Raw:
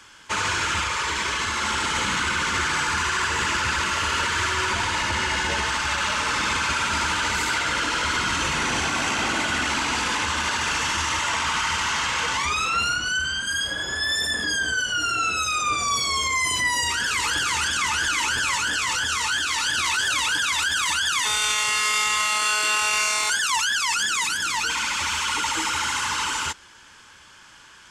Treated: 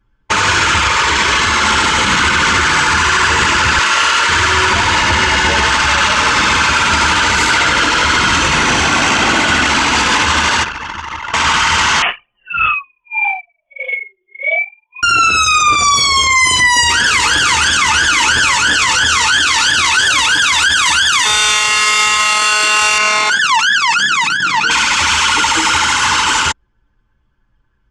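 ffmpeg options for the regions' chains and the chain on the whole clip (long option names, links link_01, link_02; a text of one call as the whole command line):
ffmpeg -i in.wav -filter_complex "[0:a]asettb=1/sr,asplit=3[link_01][link_02][link_03];[link_01]atrim=end=3.794[link_04];[link_02]atrim=start=3.79:end=4.29,asetpts=PTS-STARTPTS,afade=type=in:duration=0.004:curve=qsin,afade=type=out:start_time=0.496:duration=0.004:curve=qsin,highpass=frequency=710:poles=1,asplit=2[link_05][link_06];[link_06]adelay=24,volume=-10.5dB[link_07];[link_05][link_07]amix=inputs=2:normalize=0,atrim=end_sample=22050[link_08];[link_03]atrim=start=4.286[link_09];[link_04][link_08]acrossfade=duration=0.004:curve1=hsin:curve2=qsin[link_10];[link_10][link_09]acrossfade=duration=0.004:curve1=qsin:curve2=hsin,asettb=1/sr,asplit=3[link_11][link_12][link_13];[link_11]atrim=end=10.634[link_14];[link_12]atrim=start=10.63:end=11.34,asetpts=PTS-STARTPTS,afade=type=in:duration=0.004:curve=qsin,afade=type=out:start_time=0.706:duration=0.004:curve=qsin,bandreject=frequency=7700:width=11,acrusher=bits=7:mix=0:aa=0.5,acrossover=split=310|2300[link_15][link_16][link_17];[link_15]acompressor=threshold=-43dB:ratio=4[link_18];[link_16]acompressor=threshold=-33dB:ratio=4[link_19];[link_17]acompressor=threshold=-38dB:ratio=4[link_20];[link_18][link_19][link_20]amix=inputs=3:normalize=0[link_21];[link_13]atrim=start=11.336[link_22];[link_14][link_21]acrossfade=duration=0.004:curve1=hsin:curve2=qsin[link_23];[link_23][link_22]acrossfade=duration=0.004:curve1=qsin:curve2=hsin,asettb=1/sr,asplit=3[link_24][link_25][link_26];[link_24]atrim=end=12.024[link_27];[link_25]atrim=start=12.02:end=15.03,asetpts=PTS-STARTPTS,afade=type=in:duration=0.004:curve=qsin,afade=type=out:start_time=3.006:duration=0.004:curve=qsin,highpass=frequency=450:width=0.5412,highpass=frequency=450:width=1.3066,lowpass=frequency=3300:width_type=q:width=0.5098,lowpass=frequency=3300:width_type=q:width=0.6013,lowpass=frequency=3300:width_type=q:width=0.9,lowpass=frequency=3300:width_type=q:width=2.563,afreqshift=-3900,aeval=exprs='val(0)*pow(10,-24*(0.5-0.5*cos(2*PI*1.6*n/s))/20)':channel_layout=same[link_28];[link_26]atrim=start=15.026[link_29];[link_27][link_28]acrossfade=duration=0.004:curve1=hsin:curve2=qsin[link_30];[link_30][link_29]acrossfade=duration=0.004:curve1=qsin:curve2=hsin,asettb=1/sr,asplit=3[link_31][link_32][link_33];[link_31]atrim=end=22.984[link_34];[link_32]atrim=start=22.98:end=24.71,asetpts=PTS-STARTPTS,afade=type=in:duration=0.004:curve=qsin,afade=type=out:start_time=1.726:duration=0.004:curve=qsin,lowpass=frequency=3000:poles=1,lowshelf=frequency=110:width_type=q:width=3:gain=-8[link_35];[link_33]atrim=start=24.706[link_36];[link_34][link_35]acrossfade=duration=0.004:curve1=hsin:curve2=qsin[link_37];[link_37][link_36]acrossfade=duration=0.004:curve1=qsin:curve2=hsin,anlmdn=63.1,lowpass=8200,alimiter=level_in=16dB:limit=-1dB:release=50:level=0:latency=1,volume=-2dB" out.wav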